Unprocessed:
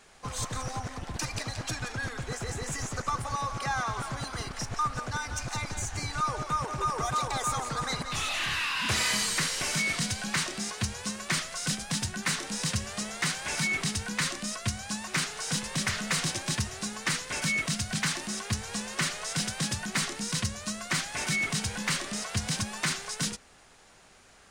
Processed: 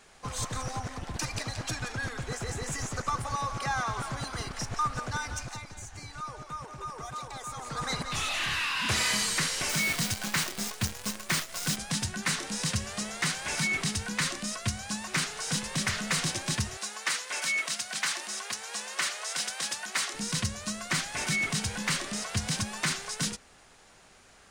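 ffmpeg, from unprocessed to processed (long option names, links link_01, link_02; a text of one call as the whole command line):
ffmpeg -i in.wav -filter_complex "[0:a]asettb=1/sr,asplit=3[link_01][link_02][link_03];[link_01]atrim=end=9.694[link_04];[link_02]atrim=start=9.69:end=11.77,asetpts=PTS-STARTPTS,afade=type=in:duration=0.004:curve=qsin,afade=type=out:start_time=2.076:duration=0.004:curve=qsin,acrusher=bits=6:dc=4:mix=0:aa=0.000001[link_05];[link_03]atrim=start=11.766[link_06];[link_04][link_05]acrossfade=duration=0.004:curve1=hsin:curve2=qsin[link_07];[link_07][link_06]acrossfade=duration=0.004:curve1=qsin:curve2=hsin,asettb=1/sr,asplit=3[link_08][link_09][link_10];[link_08]atrim=end=16.774[link_11];[link_09]atrim=start=16.77:end=20.14,asetpts=PTS-STARTPTS,afade=type=in:duration=0.004:curve=qsin,afade=type=out:start_time=3.366:duration=0.004:curve=qsin,highpass=550[link_12];[link_10]atrim=start=20.136[link_13];[link_11][link_12]acrossfade=duration=0.004:curve1=hsin:curve2=qsin[link_14];[link_14][link_13]acrossfade=duration=0.004:curve1=qsin:curve2=hsin,asplit=3[link_15][link_16][link_17];[link_15]atrim=end=5.63,asetpts=PTS-STARTPTS,afade=type=out:start_time=5.27:duration=0.36:silence=0.334965[link_18];[link_16]atrim=start=5.63:end=7.55,asetpts=PTS-STARTPTS,volume=-9.5dB[link_19];[link_17]atrim=start=7.55,asetpts=PTS-STARTPTS,afade=type=in:duration=0.36:silence=0.334965[link_20];[link_18][link_19][link_20]concat=n=3:v=0:a=1" out.wav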